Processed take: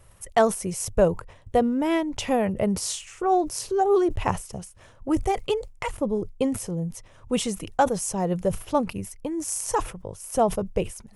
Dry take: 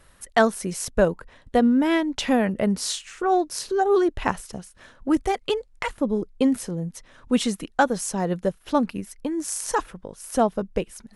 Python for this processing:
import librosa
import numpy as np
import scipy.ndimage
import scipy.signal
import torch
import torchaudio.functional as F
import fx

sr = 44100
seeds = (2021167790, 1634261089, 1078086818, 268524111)

y = fx.graphic_eq_15(x, sr, hz=(100, 250, 1600, 4000), db=(10, -8, -9, -8))
y = fx.sustainer(y, sr, db_per_s=140.0)
y = y * 10.0 ** (1.0 / 20.0)